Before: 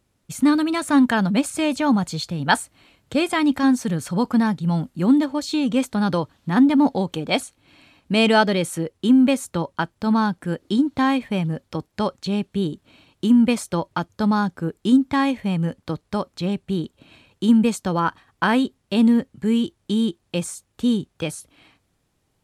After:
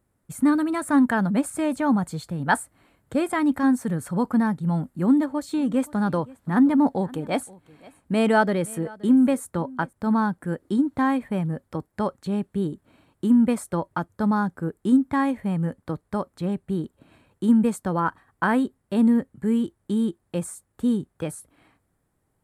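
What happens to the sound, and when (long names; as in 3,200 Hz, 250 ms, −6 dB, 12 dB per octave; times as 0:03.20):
0:05.05–0:09.93: single-tap delay 523 ms −22.5 dB
whole clip: flat-topped bell 4,000 Hz −11 dB; level −2.5 dB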